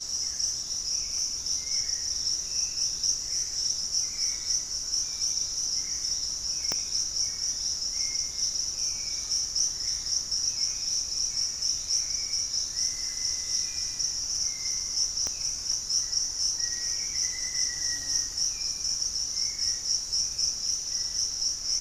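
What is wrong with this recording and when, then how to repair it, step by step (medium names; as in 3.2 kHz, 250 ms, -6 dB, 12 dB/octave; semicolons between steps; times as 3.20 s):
6.72 s: pop -13 dBFS
15.27 s: pop -18 dBFS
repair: de-click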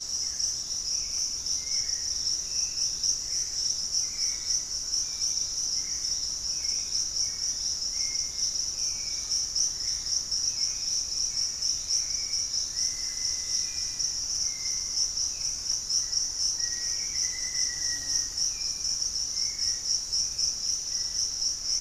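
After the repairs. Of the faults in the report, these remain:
6.72 s: pop
15.27 s: pop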